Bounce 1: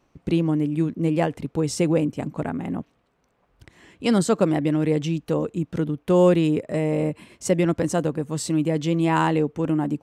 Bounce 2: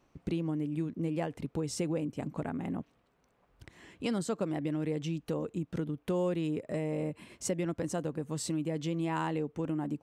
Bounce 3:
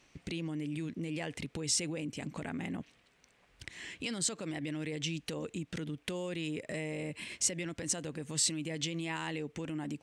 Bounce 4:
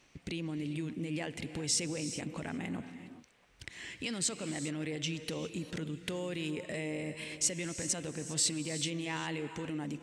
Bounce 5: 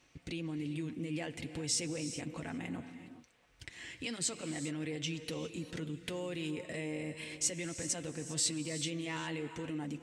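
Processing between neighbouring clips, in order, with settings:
downward compressor 2.5 to 1, threshold −30 dBFS, peak gain reduction 11.5 dB; level −3.5 dB
brickwall limiter −31 dBFS, peak gain reduction 11.5 dB; flat-topped bell 4,100 Hz +12.5 dB 2.8 octaves
reverb whose tail is shaped and stops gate 430 ms rising, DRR 10 dB
notch comb filter 200 Hz; level −1 dB

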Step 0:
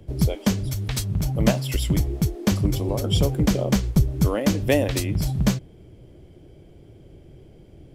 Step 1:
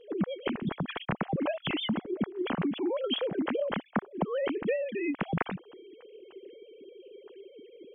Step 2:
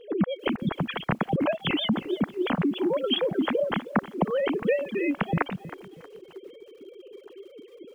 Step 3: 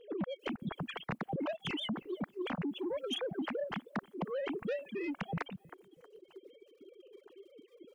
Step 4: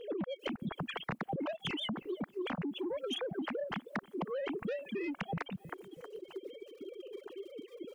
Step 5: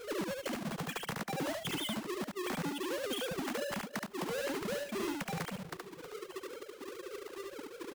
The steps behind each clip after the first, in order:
three sine waves on the formant tracks; downward compressor 12 to 1, threshold −27 dBFS, peak gain reduction 18 dB
reverb reduction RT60 1.1 s; feedback echo at a low word length 317 ms, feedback 35%, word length 9 bits, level −15 dB; level +5.5 dB
soft clipping −21 dBFS, distortion −15 dB; reverb reduction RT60 1.8 s; level −8.5 dB
downward compressor 4 to 1, threshold −47 dBFS, peak gain reduction 12.5 dB; level +10 dB
each half-wave held at its own peak; single-tap delay 72 ms −3 dB; level −4 dB

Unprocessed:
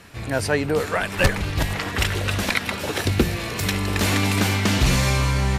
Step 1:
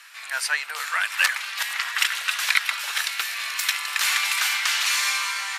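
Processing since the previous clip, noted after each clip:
high-pass filter 1,200 Hz 24 dB per octave
level +3 dB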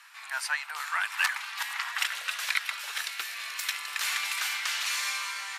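high-pass filter sweep 870 Hz → 270 Hz, 0:01.86–0:02.64
level −8 dB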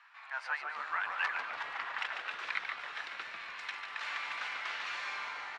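head-to-tape spacing loss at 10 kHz 37 dB
echo with shifted repeats 145 ms, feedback 51%, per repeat −150 Hz, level −6 dB

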